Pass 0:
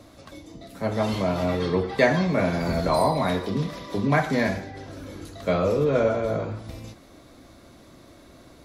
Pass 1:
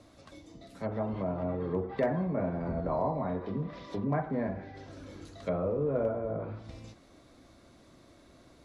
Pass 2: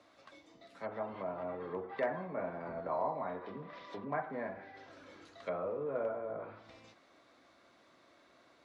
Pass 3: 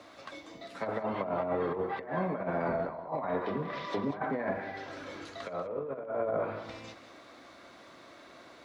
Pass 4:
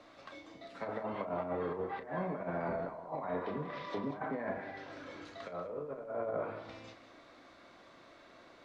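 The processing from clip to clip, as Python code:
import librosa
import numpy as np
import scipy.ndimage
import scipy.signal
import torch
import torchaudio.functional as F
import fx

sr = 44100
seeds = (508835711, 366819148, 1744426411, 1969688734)

y1 = fx.env_lowpass_down(x, sr, base_hz=1000.0, full_db=-21.0)
y1 = scipy.signal.sosfilt(scipy.signal.butter(4, 11000.0, 'lowpass', fs=sr, output='sos'), y1)
y1 = np.clip(y1, -10.0 ** (-11.5 / 20.0), 10.0 ** (-11.5 / 20.0))
y1 = y1 * librosa.db_to_amplitude(-8.0)
y2 = fx.bandpass_q(y1, sr, hz=1600.0, q=0.62)
y3 = fx.over_compress(y2, sr, threshold_db=-41.0, ratio=-0.5)
y3 = y3 + 10.0 ** (-13.0 / 20.0) * np.pad(y3, (int(191 * sr / 1000.0), 0))[:len(y3)]
y3 = y3 * librosa.db_to_amplitude(8.5)
y4 = fx.dmg_noise_colour(y3, sr, seeds[0], colour='pink', level_db=-73.0)
y4 = fx.air_absorb(y4, sr, metres=56.0)
y4 = fx.doubler(y4, sr, ms=34.0, db=-10.0)
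y4 = y4 * librosa.db_to_amplitude(-5.0)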